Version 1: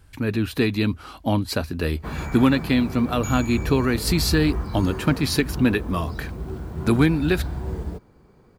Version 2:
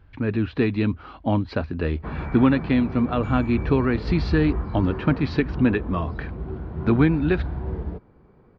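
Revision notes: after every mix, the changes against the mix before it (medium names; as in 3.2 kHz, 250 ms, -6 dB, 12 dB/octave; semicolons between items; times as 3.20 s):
master: add Gaussian low-pass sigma 2.8 samples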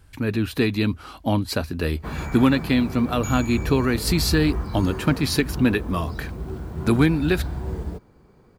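master: remove Gaussian low-pass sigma 2.8 samples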